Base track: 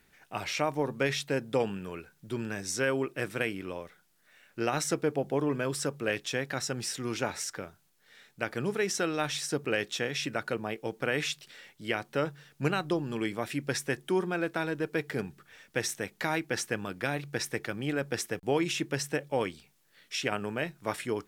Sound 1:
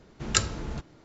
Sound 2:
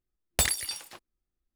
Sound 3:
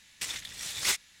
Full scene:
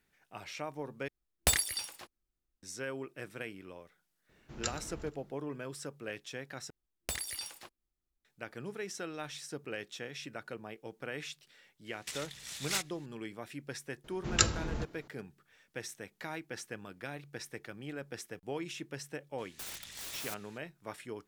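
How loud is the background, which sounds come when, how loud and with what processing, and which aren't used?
base track -11 dB
1.08 s: replace with 2 -2.5 dB
4.29 s: add 1 -13 dB + feedback delay 120 ms, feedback 49%, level -17 dB
6.70 s: replace with 2 -4 dB + compression 3:1, threshold -31 dBFS
11.86 s: add 3 -6.5 dB
14.04 s: add 1 -2 dB
19.38 s: add 3 -4.5 dB + integer overflow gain 32.5 dB

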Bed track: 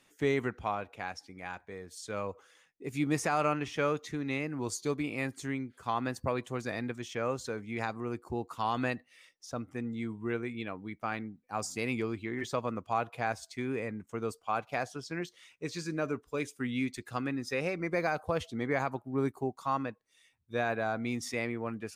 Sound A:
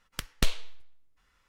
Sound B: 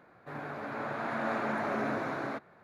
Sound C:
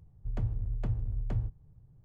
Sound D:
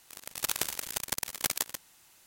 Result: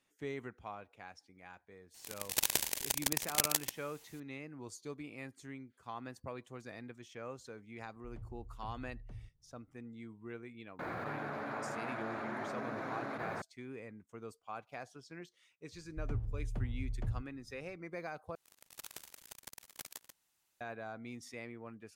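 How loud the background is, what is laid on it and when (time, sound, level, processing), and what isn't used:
bed track -12.5 dB
1.94 s: add D -0.5 dB + peaking EQ 1.3 kHz -9.5 dB 0.33 oct
7.79 s: add C -17.5 dB
10.79 s: add B -10 dB + level flattener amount 100%
15.72 s: add C -5.5 dB
18.35 s: replace with D -17.5 dB + harmonic-percussive split harmonic -3 dB
not used: A

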